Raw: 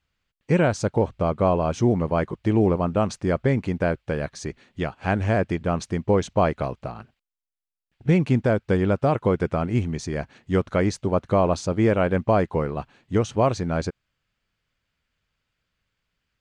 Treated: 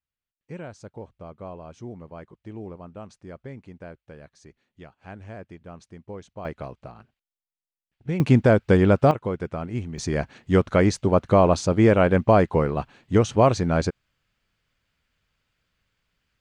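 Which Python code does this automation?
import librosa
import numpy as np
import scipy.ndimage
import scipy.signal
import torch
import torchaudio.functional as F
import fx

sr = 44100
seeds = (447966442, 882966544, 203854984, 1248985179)

y = fx.gain(x, sr, db=fx.steps((0.0, -18.0), (6.45, -8.5), (8.2, 4.0), (9.11, -6.5), (9.98, 3.0)))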